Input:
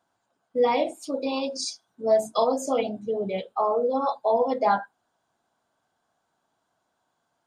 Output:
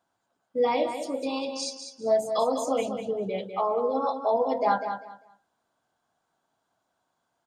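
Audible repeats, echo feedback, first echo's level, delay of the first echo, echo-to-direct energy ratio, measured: 3, 22%, -8.0 dB, 198 ms, -8.0 dB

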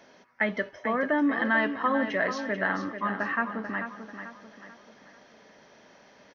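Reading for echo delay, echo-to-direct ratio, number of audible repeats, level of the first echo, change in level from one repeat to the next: 440 ms, -8.0 dB, 4, -9.0 dB, -8.0 dB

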